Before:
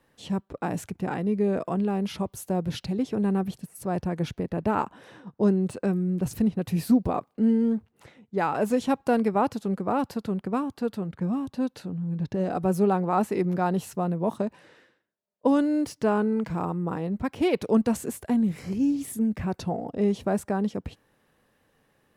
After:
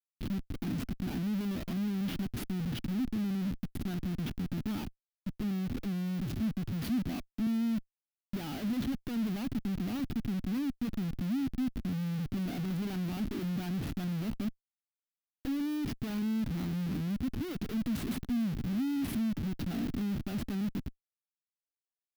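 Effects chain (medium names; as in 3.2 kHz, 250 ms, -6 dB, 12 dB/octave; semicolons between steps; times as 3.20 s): Schmitt trigger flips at -36.5 dBFS; graphic EQ 250/500/1000/2000/8000 Hz +10/-11/-8/-3/-10 dB; 4.84–7.47 s: three bands expanded up and down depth 40%; trim -9 dB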